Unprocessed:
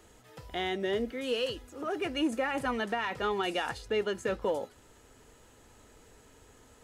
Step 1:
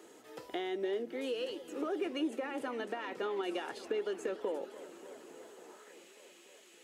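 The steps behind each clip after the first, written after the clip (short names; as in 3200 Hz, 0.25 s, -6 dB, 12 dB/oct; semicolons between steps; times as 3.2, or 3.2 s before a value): compressor, threshold -38 dBFS, peak gain reduction 12.5 dB; high-pass sweep 330 Hz -> 2500 Hz, 5.48–5.98; warbling echo 0.286 s, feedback 79%, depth 213 cents, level -16.5 dB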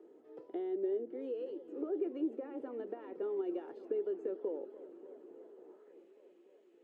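band-pass 370 Hz, Q 2.1; gain +1 dB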